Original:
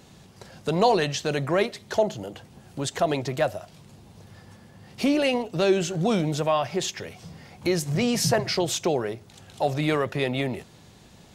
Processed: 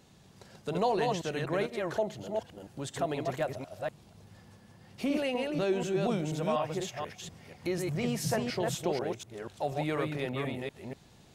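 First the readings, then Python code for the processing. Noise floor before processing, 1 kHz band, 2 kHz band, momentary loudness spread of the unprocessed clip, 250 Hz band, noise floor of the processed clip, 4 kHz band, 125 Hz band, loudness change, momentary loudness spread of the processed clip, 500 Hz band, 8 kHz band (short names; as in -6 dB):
-52 dBFS, -7.0 dB, -7.5 dB, 15 LU, -7.0 dB, -58 dBFS, -10.5 dB, -7.0 dB, -8.0 dB, 11 LU, -7.0 dB, -10.0 dB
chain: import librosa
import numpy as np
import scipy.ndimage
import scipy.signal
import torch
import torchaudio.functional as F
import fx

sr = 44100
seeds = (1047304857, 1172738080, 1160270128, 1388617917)

y = fx.reverse_delay(x, sr, ms=243, wet_db=-3.0)
y = fx.dynamic_eq(y, sr, hz=5000.0, q=1.2, threshold_db=-43.0, ratio=4.0, max_db=-6)
y = F.gain(torch.from_numpy(y), -8.5).numpy()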